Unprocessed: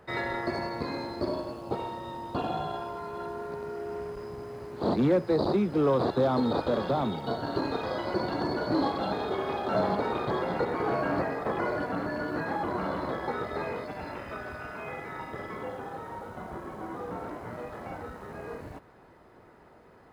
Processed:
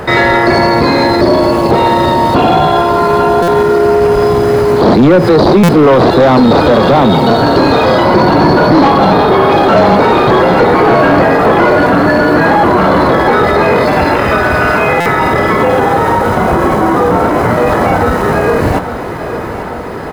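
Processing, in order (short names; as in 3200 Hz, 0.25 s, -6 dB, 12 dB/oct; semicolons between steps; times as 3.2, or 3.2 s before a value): 8.02–9.51 fifteen-band EQ 160 Hz +6 dB, 1000 Hz +4 dB, 2500 Hz -3 dB, 6300 Hz -7 dB; on a send: feedback echo 0.841 s, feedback 56%, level -15 dB; on the sum: soft clip -24.5 dBFS, distortion -12 dB; maximiser +33.5 dB; stuck buffer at 3.42/5.63/15, samples 256, times 9; gain -1 dB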